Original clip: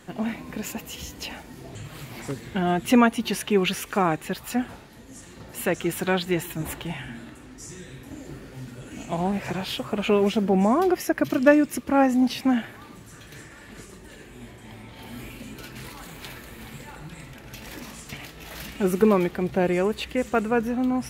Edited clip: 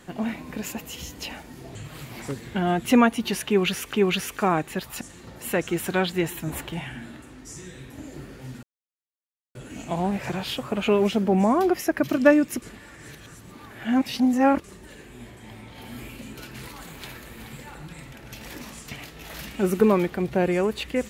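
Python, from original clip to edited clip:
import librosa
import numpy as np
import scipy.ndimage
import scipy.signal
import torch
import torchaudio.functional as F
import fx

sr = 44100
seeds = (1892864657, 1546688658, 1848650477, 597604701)

y = fx.edit(x, sr, fx.repeat(start_s=3.47, length_s=0.46, count=2),
    fx.cut(start_s=4.55, length_s=0.59),
    fx.insert_silence(at_s=8.76, length_s=0.92),
    fx.reverse_span(start_s=11.83, length_s=2.02), tone=tone)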